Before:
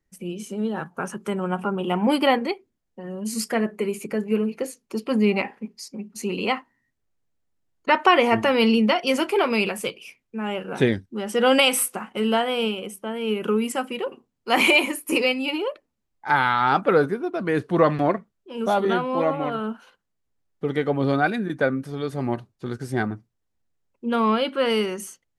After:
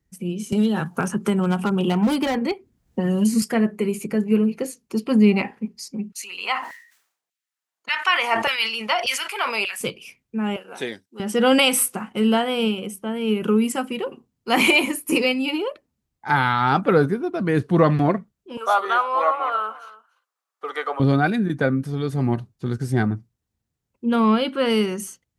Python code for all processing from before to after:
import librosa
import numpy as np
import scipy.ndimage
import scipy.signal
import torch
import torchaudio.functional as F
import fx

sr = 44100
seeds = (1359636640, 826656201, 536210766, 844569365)

y = fx.chain(x, sr, fx.clip_hard(threshold_db=-17.5),
    fx.band_squash(depth_pct=100), at=(0.52, 3.42))
y = fx.chain(y, sr, fx.filter_lfo_highpass(shape='saw_down', hz=1.7, low_hz=630.0, high_hz=2600.0, q=1.2),
    fx.sustainer(db_per_s=98.0), at=(6.12, 9.81))
y = fx.chain(y, sr, fx.highpass(hz=670.0, slope=12),
    fx.peak_eq(hz=1500.0, db=-5.5, octaves=2.3), at=(10.56, 11.2))
y = fx.chain(y, sr, fx.highpass(hz=540.0, slope=24),
    fx.peak_eq(hz=1200.0, db=13.5, octaves=0.5),
    fx.echo_single(ms=292, db=-19.5), at=(18.57, 21.0))
y = scipy.signal.sosfilt(scipy.signal.butter(2, 42.0, 'highpass', fs=sr, output='sos'), y)
y = fx.bass_treble(y, sr, bass_db=9, treble_db=3)
y = fx.notch(y, sr, hz=580.0, q=18.0)